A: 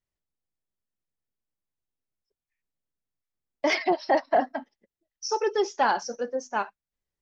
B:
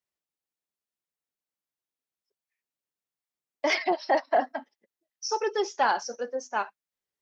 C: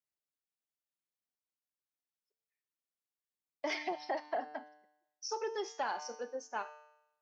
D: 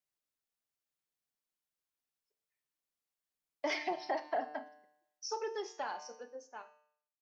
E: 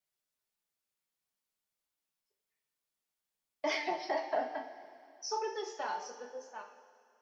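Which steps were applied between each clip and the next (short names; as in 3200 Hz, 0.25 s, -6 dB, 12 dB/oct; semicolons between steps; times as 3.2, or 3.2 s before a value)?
HPF 400 Hz 6 dB/oct
resonator 150 Hz, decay 0.85 s, harmonics all, mix 70%; compressor 3:1, threshold -34 dBFS, peak gain reduction 5.5 dB; gain +1 dB
ending faded out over 2.36 s; reverb RT60 0.30 s, pre-delay 7 ms, DRR 11.5 dB; gain +1 dB
vibrato 2 Hz 24 cents; two-slope reverb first 0.28 s, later 2.7 s, from -18 dB, DRR 2 dB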